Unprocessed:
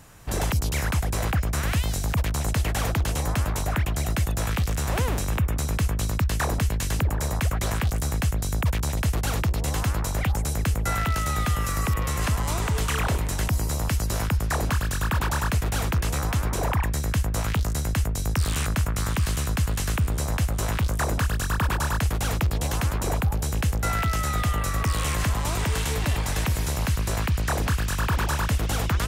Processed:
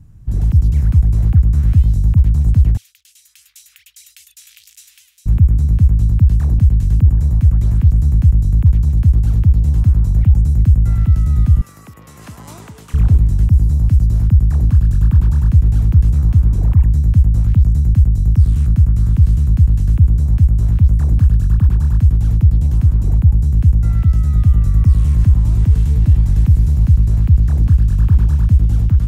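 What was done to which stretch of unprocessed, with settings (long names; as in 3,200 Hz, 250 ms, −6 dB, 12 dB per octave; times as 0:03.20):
0:02.77–0:05.26: inverse Chebyshev high-pass filter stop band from 590 Hz, stop band 70 dB
0:11.61–0:12.94: high-pass filter 520 Hz
whole clip: bass and treble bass +13 dB, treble +6 dB; automatic gain control; drawn EQ curve 100 Hz 0 dB, 300 Hz −5 dB, 520 Hz −14 dB, 8,400 Hz −22 dB; level −1 dB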